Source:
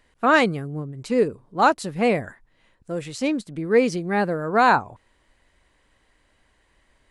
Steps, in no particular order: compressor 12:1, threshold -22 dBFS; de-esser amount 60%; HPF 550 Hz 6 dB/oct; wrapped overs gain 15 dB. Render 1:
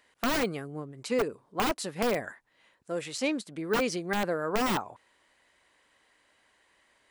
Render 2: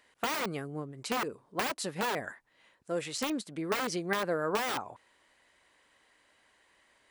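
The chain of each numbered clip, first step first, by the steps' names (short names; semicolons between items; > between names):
HPF > wrapped overs > de-esser > compressor; wrapped overs > HPF > compressor > de-esser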